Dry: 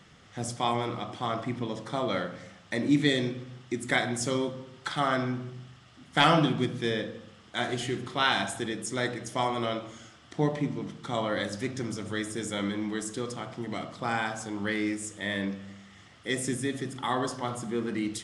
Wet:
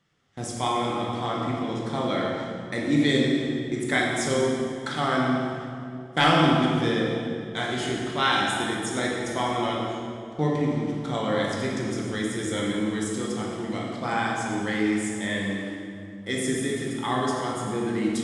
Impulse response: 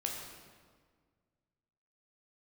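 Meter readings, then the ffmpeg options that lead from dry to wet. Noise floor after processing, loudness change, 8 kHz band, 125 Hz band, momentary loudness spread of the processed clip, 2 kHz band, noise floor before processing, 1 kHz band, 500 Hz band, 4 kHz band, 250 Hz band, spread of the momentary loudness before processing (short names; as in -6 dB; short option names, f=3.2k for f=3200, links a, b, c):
-38 dBFS, +4.0 dB, +3.0 dB, +4.0 dB, 9 LU, +4.0 dB, -55 dBFS, +4.0 dB, +4.5 dB, +3.0 dB, +5.0 dB, 12 LU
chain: -filter_complex "[0:a]agate=range=-17dB:threshold=-44dB:ratio=16:detection=peak[a];[1:a]atrim=start_sample=2205,asetrate=28665,aresample=44100[b];[a][b]afir=irnorm=-1:irlink=0,volume=-1dB"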